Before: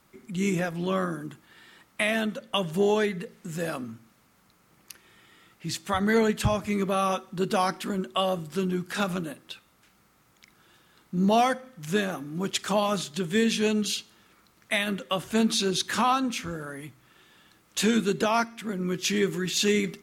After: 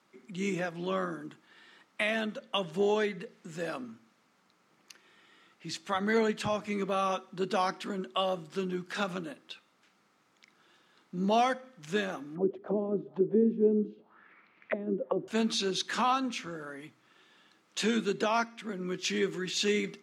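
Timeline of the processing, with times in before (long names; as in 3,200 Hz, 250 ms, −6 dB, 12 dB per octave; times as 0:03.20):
0:12.35–0:15.28: envelope-controlled low-pass 360–2,500 Hz down, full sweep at −25 dBFS
whole clip: three-way crossover with the lows and the highs turned down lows −22 dB, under 170 Hz, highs −17 dB, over 7,400 Hz; level −4 dB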